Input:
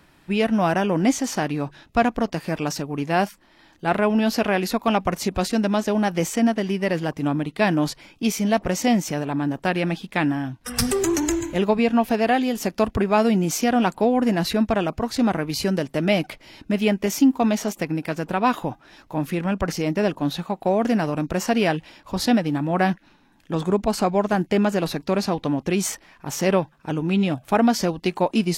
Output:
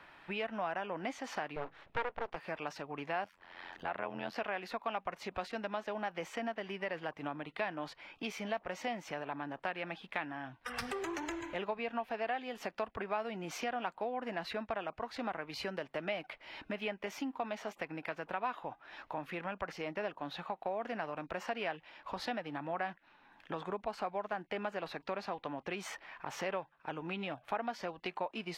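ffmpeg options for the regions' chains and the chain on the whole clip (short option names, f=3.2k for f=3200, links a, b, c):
-filter_complex "[0:a]asettb=1/sr,asplit=3[a][b][c];[a]atrim=end=1.564[d];[b]atrim=start=1.56:end=2.36,asetpts=PTS-STARTPTS,afade=t=in:d=0.004:c=qsin,afade=t=out:st=0.796:d=0.004:c=qsin,lowpass=5.1k,lowshelf=f=320:g=10.5,aeval=exprs='abs(val(0))':c=same[e];[c]atrim=start=2.356[f];[d][e]acrossfade=d=0.004:c1=hsin:c2=qsin[g];[g][f]acrossfade=d=0.004:c1=qsin:c2=hsin,asettb=1/sr,asplit=3[h][i][j];[h]atrim=end=3.244[k];[i]atrim=start=3.24:end=4.36,asetpts=PTS-STARTPTS,afade=t=in:d=0.004:c=qsin,afade=t=out:st=1.116:d=0.004:c=qsin,tremolo=f=88:d=0.974,acompressor=mode=upward:threshold=-35dB:ratio=2.5:attack=3.2:release=140:knee=2.83:detection=peak,equalizer=f=200:t=o:w=0.24:g=4[l];[j]atrim=start=4.356[m];[k][l]acrossfade=d=0.004:c1=hsin:c2=qsin[n];[n][m]acrossfade=d=0.004:c1=qsin:c2=hsin,acrossover=split=530 3400:gain=0.158 1 0.0891[o][p][q];[o][p][q]amix=inputs=3:normalize=0,acompressor=threshold=-45dB:ratio=2.5,volume=3dB"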